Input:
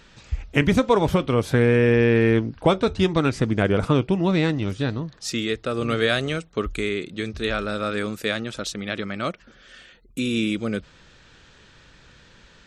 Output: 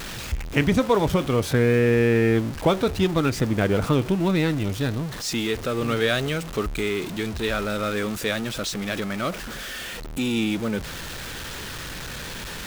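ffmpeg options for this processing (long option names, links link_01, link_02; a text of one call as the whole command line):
ffmpeg -i in.wav -af "aeval=exprs='val(0)+0.5*0.0473*sgn(val(0))':channel_layout=same,volume=-2.5dB" out.wav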